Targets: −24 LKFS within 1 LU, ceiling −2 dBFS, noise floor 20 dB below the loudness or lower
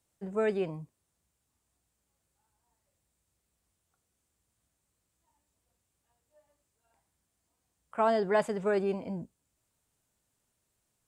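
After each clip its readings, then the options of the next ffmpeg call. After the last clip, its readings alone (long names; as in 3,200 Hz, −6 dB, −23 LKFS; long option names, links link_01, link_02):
integrated loudness −30.5 LKFS; sample peak −15.0 dBFS; target loudness −24.0 LKFS
→ -af "volume=6.5dB"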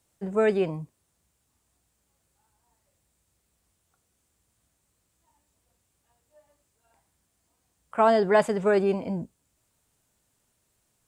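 integrated loudness −24.5 LKFS; sample peak −8.5 dBFS; background noise floor −74 dBFS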